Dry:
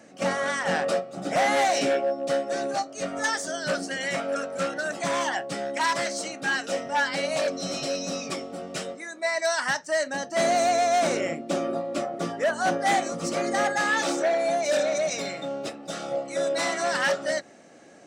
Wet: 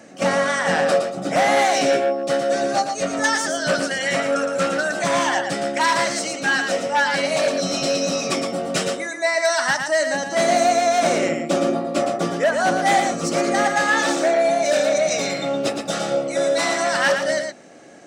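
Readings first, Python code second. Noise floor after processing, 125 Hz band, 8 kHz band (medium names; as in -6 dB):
-31 dBFS, +7.5 dB, +6.5 dB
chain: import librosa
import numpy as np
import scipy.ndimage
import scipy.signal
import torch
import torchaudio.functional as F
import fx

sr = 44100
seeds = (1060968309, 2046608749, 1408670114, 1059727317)

p1 = fx.rider(x, sr, range_db=10, speed_s=0.5)
p2 = x + F.gain(torch.from_numpy(p1), -1.0).numpy()
y = p2 + 10.0 ** (-6.0 / 20.0) * np.pad(p2, (int(115 * sr / 1000.0), 0))[:len(p2)]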